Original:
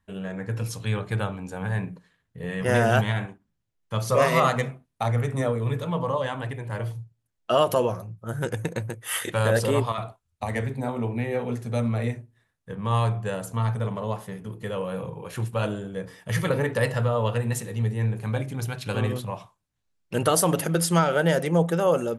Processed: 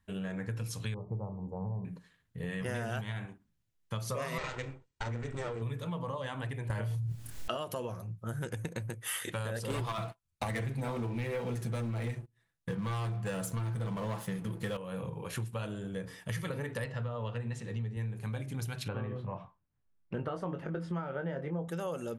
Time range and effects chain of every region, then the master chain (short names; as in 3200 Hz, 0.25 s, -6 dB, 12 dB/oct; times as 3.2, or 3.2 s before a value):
0.94–1.85 elliptic low-pass 1000 Hz + notch 280 Hz, Q 6.4
4.38–5.62 minimum comb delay 2.1 ms + Chebyshev low-pass 8200 Hz, order 6
6.7–7.57 doubler 28 ms -4 dB + fast leveller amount 100%
9.7–14.77 sample leveller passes 3 + comb 6 ms, depth 41%
16.84–17.97 HPF 63 Hz + air absorption 110 m
18.88–21.68 LPF 1500 Hz + doubler 22 ms -7 dB
whole clip: bell 630 Hz -4.5 dB 2.1 oct; compressor 6:1, threshold -34 dBFS